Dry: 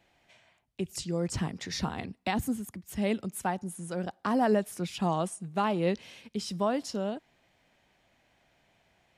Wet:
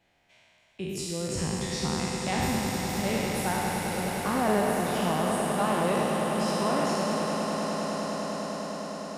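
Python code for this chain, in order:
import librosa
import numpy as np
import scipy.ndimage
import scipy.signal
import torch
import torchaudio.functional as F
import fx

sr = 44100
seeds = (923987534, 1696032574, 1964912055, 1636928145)

y = fx.spec_trails(x, sr, decay_s=2.52)
y = fx.echo_swell(y, sr, ms=102, loudest=8, wet_db=-11.0)
y = F.gain(torch.from_numpy(y), -4.0).numpy()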